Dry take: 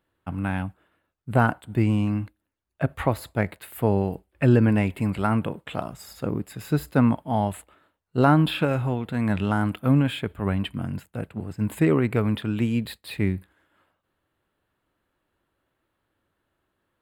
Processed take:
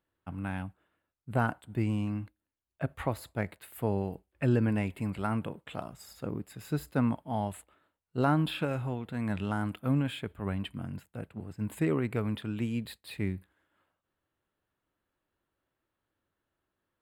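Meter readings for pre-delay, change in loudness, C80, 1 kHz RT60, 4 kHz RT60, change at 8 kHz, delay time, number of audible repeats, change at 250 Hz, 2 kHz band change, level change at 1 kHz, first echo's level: none, -8.5 dB, none, none, none, -6.5 dB, none, none, -8.5 dB, -8.0 dB, -8.5 dB, none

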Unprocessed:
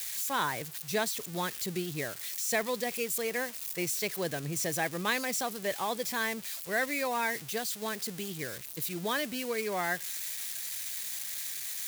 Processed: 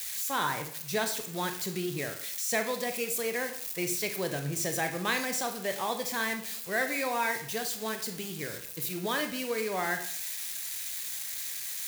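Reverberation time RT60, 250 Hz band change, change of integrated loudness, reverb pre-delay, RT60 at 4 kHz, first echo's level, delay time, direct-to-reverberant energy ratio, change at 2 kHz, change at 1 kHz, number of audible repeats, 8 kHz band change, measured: 0.55 s, +1.0 dB, +1.0 dB, 21 ms, 0.50 s, none, none, 5.5 dB, +1.0 dB, +1.0 dB, none, +1.0 dB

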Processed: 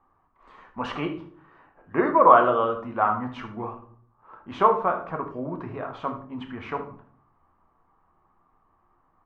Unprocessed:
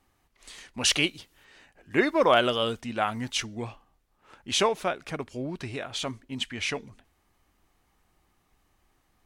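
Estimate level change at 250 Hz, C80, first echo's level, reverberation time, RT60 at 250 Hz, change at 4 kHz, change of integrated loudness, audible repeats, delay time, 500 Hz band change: +1.0 dB, 14.5 dB, -13.5 dB, 0.50 s, 0.75 s, -17.0 dB, +3.5 dB, 1, 76 ms, +3.0 dB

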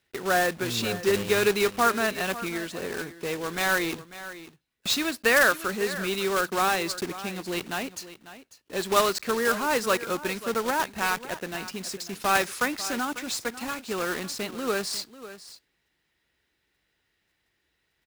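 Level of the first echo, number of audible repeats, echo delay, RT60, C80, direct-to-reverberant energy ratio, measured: -15.0 dB, 1, 0.546 s, none, none, none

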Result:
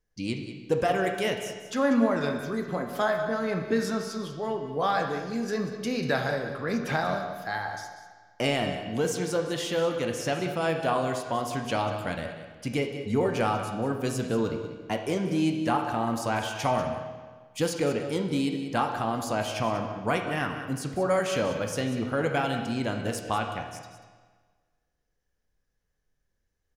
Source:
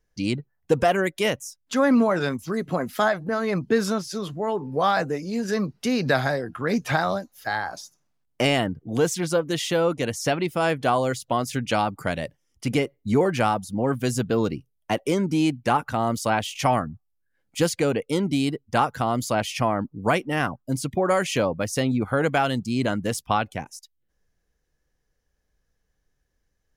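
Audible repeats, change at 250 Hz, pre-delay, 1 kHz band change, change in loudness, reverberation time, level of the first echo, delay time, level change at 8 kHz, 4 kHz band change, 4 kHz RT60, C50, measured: 1, -4.5 dB, 12 ms, -4.5 dB, -4.5 dB, 1.5 s, -12.0 dB, 0.19 s, -5.5 dB, -4.5 dB, 1.3 s, 5.5 dB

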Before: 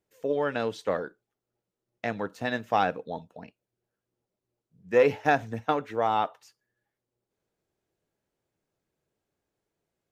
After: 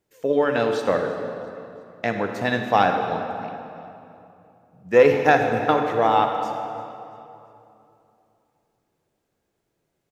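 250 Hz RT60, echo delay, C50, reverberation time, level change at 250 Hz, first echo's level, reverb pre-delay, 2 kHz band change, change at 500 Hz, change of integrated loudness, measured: 3.1 s, 0.341 s, 4.5 dB, 2.8 s, +8.0 dB, -21.0 dB, 37 ms, +7.0 dB, +7.5 dB, +6.5 dB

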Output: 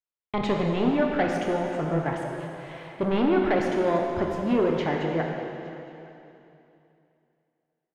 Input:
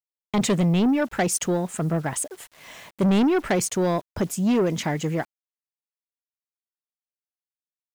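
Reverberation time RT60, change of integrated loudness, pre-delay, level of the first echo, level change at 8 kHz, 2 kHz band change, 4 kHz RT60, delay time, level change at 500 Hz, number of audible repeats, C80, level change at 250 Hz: 2.9 s, -2.5 dB, 7 ms, -23.0 dB, under -20 dB, -0.5 dB, 2.8 s, 0.866 s, +1.0 dB, 1, 2.5 dB, -3.5 dB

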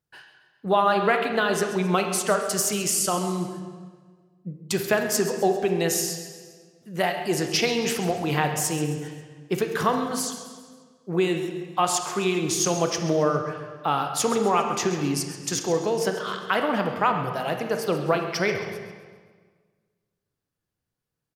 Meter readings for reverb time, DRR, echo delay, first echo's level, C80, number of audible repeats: 1.6 s, 4.5 dB, 0.134 s, -14.5 dB, 7.0 dB, 3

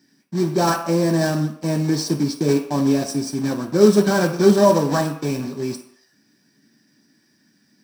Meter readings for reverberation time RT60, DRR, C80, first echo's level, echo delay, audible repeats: 0.65 s, 2.0 dB, 12.5 dB, none, none, none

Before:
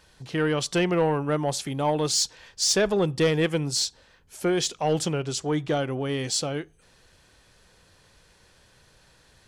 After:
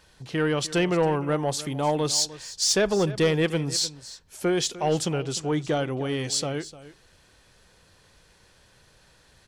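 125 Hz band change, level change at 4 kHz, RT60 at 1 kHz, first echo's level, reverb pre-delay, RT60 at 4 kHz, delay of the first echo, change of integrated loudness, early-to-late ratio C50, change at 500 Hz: 0.0 dB, 0.0 dB, none, -16.5 dB, none, none, 0.302 s, 0.0 dB, none, 0.0 dB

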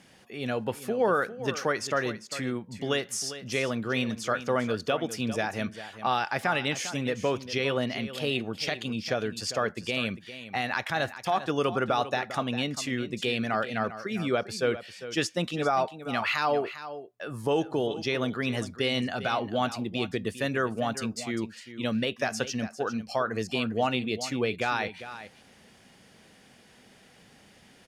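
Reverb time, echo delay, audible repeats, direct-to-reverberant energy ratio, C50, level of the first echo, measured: none, 0.4 s, 1, none, none, -13.0 dB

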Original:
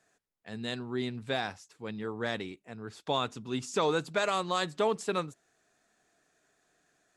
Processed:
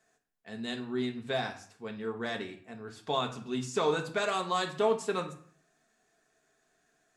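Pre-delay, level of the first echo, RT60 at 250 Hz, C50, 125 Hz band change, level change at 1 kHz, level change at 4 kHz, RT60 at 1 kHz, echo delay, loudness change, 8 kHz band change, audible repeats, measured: 3 ms, none, 0.65 s, 11.0 dB, -1.5 dB, 0.0 dB, -1.0 dB, 0.55 s, none, 0.0 dB, -1.0 dB, none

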